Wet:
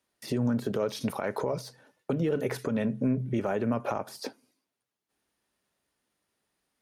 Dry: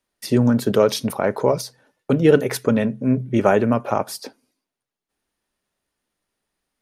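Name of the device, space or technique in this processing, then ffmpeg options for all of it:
podcast mastering chain: -filter_complex "[0:a]asplit=3[s0][s1][s2];[s0]afade=t=out:st=0.9:d=0.02[s3];[s1]tiltshelf=f=1400:g=-4,afade=t=in:st=0.9:d=0.02,afade=t=out:st=1.37:d=0.02[s4];[s2]afade=t=in:st=1.37:d=0.02[s5];[s3][s4][s5]amix=inputs=3:normalize=0,highpass=60,deesser=0.85,acompressor=threshold=0.126:ratio=6,alimiter=limit=0.119:level=0:latency=1:release=156" -ar 44100 -c:a libmp3lame -b:a 128k

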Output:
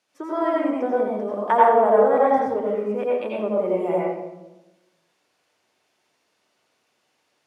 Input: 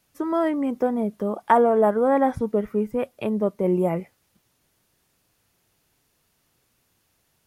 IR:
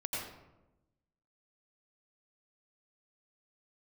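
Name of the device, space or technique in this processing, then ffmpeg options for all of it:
supermarket ceiling speaker: -filter_complex "[0:a]highpass=350,lowpass=6600[s0];[1:a]atrim=start_sample=2205[s1];[s0][s1]afir=irnorm=-1:irlink=0"

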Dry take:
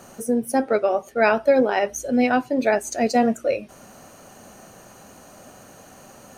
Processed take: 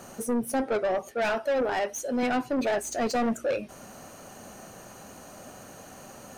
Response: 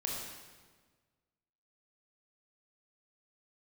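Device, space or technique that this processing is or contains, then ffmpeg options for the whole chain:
saturation between pre-emphasis and de-emphasis: -filter_complex "[0:a]asettb=1/sr,asplit=3[s0][s1][s2];[s0]atrim=end=1.114[s3];[s1]atrim=start=1.11:end=2.23,asetpts=PTS-STARTPTS,afade=t=in:d=0.004:c=qsin,afade=t=out:st=1.116:d=0.004:c=qsin,highpass=f=400:p=1[s4];[s2]atrim=start=2.226[s5];[s3][s4]acrossfade=d=0.004:c1=hsin:c2=qsin[s6];[s6][s5]acrossfade=d=0.004:c1=qsin:c2=hsin,highshelf=f=3000:g=9,asoftclip=type=tanh:threshold=0.0794,highshelf=f=3000:g=-9"

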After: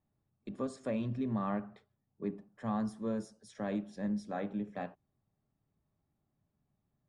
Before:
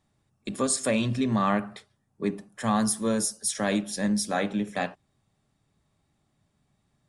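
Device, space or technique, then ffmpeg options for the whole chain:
through cloth: -af "lowpass=6400,highshelf=f=2000:g=-17,volume=0.376"

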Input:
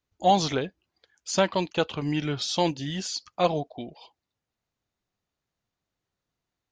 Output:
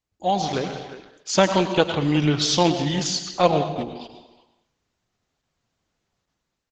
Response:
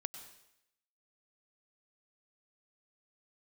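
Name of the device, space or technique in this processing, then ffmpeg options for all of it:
speakerphone in a meeting room: -filter_complex "[1:a]atrim=start_sample=2205[s0];[0:a][s0]afir=irnorm=-1:irlink=0,asplit=2[s1][s2];[s2]adelay=360,highpass=300,lowpass=3400,asoftclip=type=hard:threshold=0.112,volume=0.141[s3];[s1][s3]amix=inputs=2:normalize=0,dynaudnorm=f=100:g=13:m=3.76" -ar 48000 -c:a libopus -b:a 12k

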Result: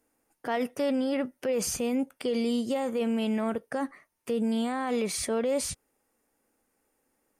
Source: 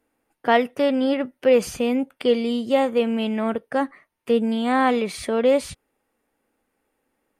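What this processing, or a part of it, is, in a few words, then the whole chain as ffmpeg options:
over-bright horn tweeter: -af "highshelf=f=4600:t=q:w=1.5:g=6.5,alimiter=limit=0.126:level=0:latency=1:release=31,volume=0.75"

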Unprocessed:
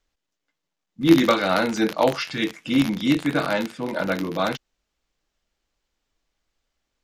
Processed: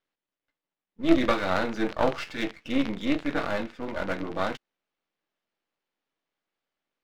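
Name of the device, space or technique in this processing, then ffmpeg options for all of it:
crystal radio: -af "highpass=200,lowpass=3200,aeval=exprs='if(lt(val(0),0),0.251*val(0),val(0))':c=same,volume=0.841"

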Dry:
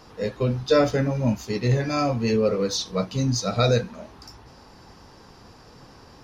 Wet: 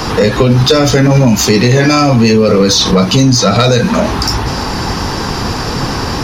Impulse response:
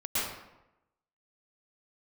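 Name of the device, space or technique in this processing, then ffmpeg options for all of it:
mastering chain: -filter_complex "[0:a]equalizer=f=560:t=o:w=0.76:g=-4,acrossover=split=180|3000|7000[s0][s1][s2][s3];[s0]acompressor=threshold=0.0141:ratio=4[s4];[s1]acompressor=threshold=0.0355:ratio=4[s5];[s2]acompressor=threshold=0.0112:ratio=4[s6];[s3]acompressor=threshold=0.00398:ratio=4[s7];[s4][s5][s6][s7]amix=inputs=4:normalize=0,acompressor=threshold=0.02:ratio=2,asoftclip=type=tanh:threshold=0.0562,asoftclip=type=hard:threshold=0.0398,alimiter=level_in=47.3:limit=0.891:release=50:level=0:latency=1,volume=0.891"

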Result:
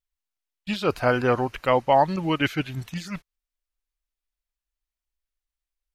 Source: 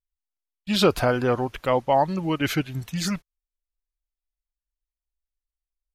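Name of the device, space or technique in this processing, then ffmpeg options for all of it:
de-esser from a sidechain: -filter_complex "[0:a]asplit=2[s0][s1];[s1]highpass=f=5900:w=0.5412,highpass=f=5900:w=1.3066,apad=whole_len=262188[s2];[s0][s2]sidechaincompress=threshold=0.00316:ratio=3:attack=1.9:release=61,asettb=1/sr,asplit=3[s3][s4][s5];[s3]atrim=end=0.864[s6];[s4]atrim=start=0.86:end=1.94,asetpts=PTS-STARTPTS,afade=t=in:d=0.004:c=qsin,afade=t=out:st=1.076:d=0.004:c=qsin,bandreject=f=3400:w=9[s7];[s5]atrim=start=1.936[s8];[s6][s7]acrossfade=d=0.004:c1=hsin:c2=qsin[s9];[s9][s8]acrossfade=d=0.004:c1=qsin:c2=hsin,equalizer=f=2300:t=o:w=2.7:g=4.5"

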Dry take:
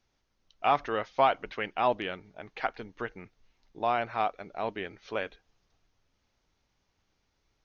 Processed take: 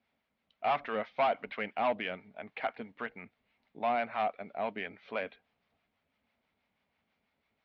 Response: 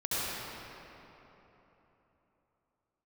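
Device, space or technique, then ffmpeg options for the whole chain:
guitar amplifier with harmonic tremolo: -filter_complex "[0:a]acrossover=split=720[s0][s1];[s0]aeval=exprs='val(0)*(1-0.5/2+0.5/2*cos(2*PI*6.1*n/s))':c=same[s2];[s1]aeval=exprs='val(0)*(1-0.5/2-0.5/2*cos(2*PI*6.1*n/s))':c=same[s3];[s2][s3]amix=inputs=2:normalize=0,asoftclip=type=tanh:threshold=0.0562,highpass=110,equalizer=f=120:t=q:w=4:g=-8,equalizer=f=230:t=q:w=4:g=7,equalizer=f=340:t=q:w=4:g=-7,equalizer=f=660:t=q:w=4:g=5,equalizer=f=2200:t=q:w=4:g=6,lowpass=f=3700:w=0.5412,lowpass=f=3700:w=1.3066"

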